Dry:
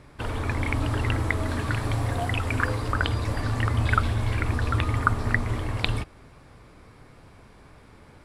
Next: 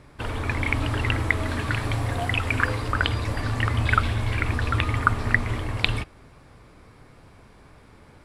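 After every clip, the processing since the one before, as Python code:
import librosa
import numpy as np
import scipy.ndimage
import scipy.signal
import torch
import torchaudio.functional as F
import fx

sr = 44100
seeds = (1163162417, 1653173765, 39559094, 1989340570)

y = fx.dynamic_eq(x, sr, hz=2500.0, q=1.0, threshold_db=-41.0, ratio=4.0, max_db=6)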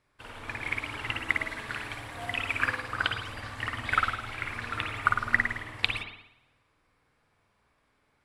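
y = fx.tilt_shelf(x, sr, db=-6.0, hz=650.0)
y = fx.rev_spring(y, sr, rt60_s=1.1, pass_ms=(51,), chirp_ms=75, drr_db=-0.5)
y = fx.upward_expand(y, sr, threshold_db=-41.0, expansion=1.5)
y = y * 10.0 ** (-8.0 / 20.0)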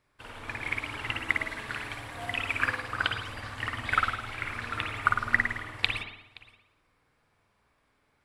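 y = x + 10.0 ** (-22.5 / 20.0) * np.pad(x, (int(522 * sr / 1000.0), 0))[:len(x)]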